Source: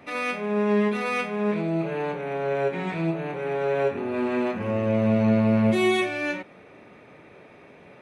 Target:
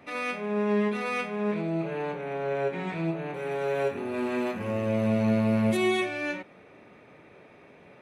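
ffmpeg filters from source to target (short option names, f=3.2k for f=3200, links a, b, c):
-filter_complex "[0:a]asettb=1/sr,asplit=3[a][b][c];[a]atrim=end=3.344[d];[b]atrim=start=3.34:end=5.77,asetpts=PTS-STARTPTS,afade=t=in:d=0.004:c=qsin,afade=t=out:st=2.426:d=0.004:c=qsin,aemphasis=mode=production:type=50fm[e];[c]atrim=start=5.766[f];[d][e]acrossfade=d=0.004:c1=hsin:c2=qsin[g];[g][f]acrossfade=d=0.004:c1=qsin:c2=hsin,volume=-3.5dB"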